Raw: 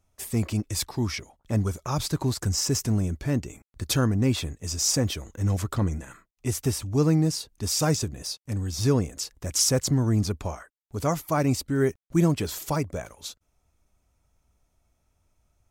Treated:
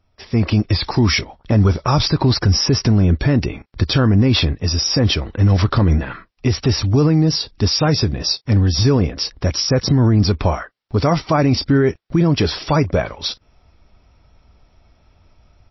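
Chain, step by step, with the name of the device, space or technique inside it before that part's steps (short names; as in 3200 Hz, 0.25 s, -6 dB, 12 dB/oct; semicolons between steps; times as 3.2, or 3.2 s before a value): low-bitrate web radio (AGC gain up to 11 dB; limiter -12.5 dBFS, peak gain reduction 10.5 dB; gain +6.5 dB; MP3 24 kbps 16000 Hz)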